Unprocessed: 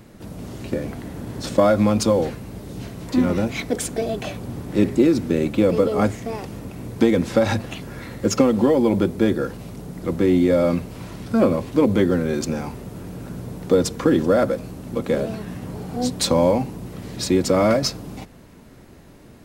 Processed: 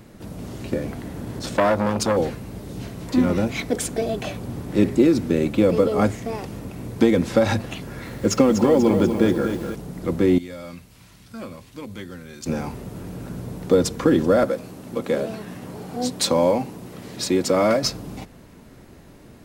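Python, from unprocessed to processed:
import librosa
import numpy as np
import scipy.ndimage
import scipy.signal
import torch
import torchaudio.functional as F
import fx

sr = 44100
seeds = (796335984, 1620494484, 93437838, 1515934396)

y = fx.transformer_sat(x, sr, knee_hz=1200.0, at=(1.39, 2.17))
y = fx.echo_crushed(y, sr, ms=244, feedback_pct=55, bits=7, wet_db=-7.5, at=(7.81, 9.75))
y = fx.tone_stack(y, sr, knobs='5-5-5', at=(10.38, 12.46))
y = fx.highpass(y, sr, hz=230.0, slope=6, at=(14.44, 17.84))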